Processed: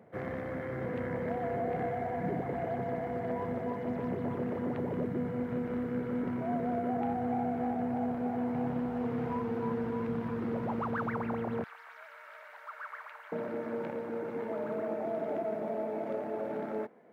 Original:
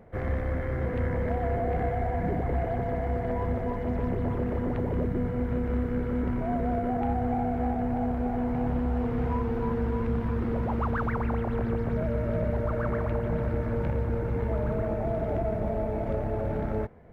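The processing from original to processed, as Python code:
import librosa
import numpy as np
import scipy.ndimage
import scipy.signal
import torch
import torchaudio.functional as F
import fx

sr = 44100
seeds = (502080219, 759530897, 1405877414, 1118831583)

y = fx.highpass(x, sr, hz=fx.steps((0.0, 130.0), (11.64, 1100.0), (13.32, 220.0)), slope=24)
y = y * librosa.db_to_amplitude(-3.5)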